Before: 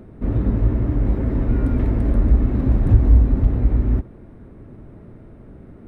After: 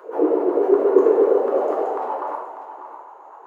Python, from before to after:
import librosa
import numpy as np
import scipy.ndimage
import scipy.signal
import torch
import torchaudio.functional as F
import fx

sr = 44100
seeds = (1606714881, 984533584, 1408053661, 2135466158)

p1 = fx.rider(x, sr, range_db=10, speed_s=0.5)
p2 = x + (p1 * 10.0 ** (-1.0 / 20.0))
p3 = fx.filter_lfo_highpass(p2, sr, shape='saw_down', hz=4.8, low_hz=450.0, high_hz=1500.0, q=6.9)
p4 = fx.formant_shift(p3, sr, semitones=-5)
p5 = fx.filter_sweep_highpass(p4, sr, from_hz=420.0, to_hz=880.0, start_s=2.11, end_s=3.39, q=4.5)
p6 = fx.stretch_grains(p5, sr, factor=0.59, grain_ms=163.0)
p7 = p6 + fx.echo_single(p6, sr, ms=595, db=-11.0, dry=0)
p8 = fx.rev_double_slope(p7, sr, seeds[0], early_s=0.78, late_s=2.6, knee_db=-18, drr_db=-0.5)
y = p8 * 10.0 ** (-4.5 / 20.0)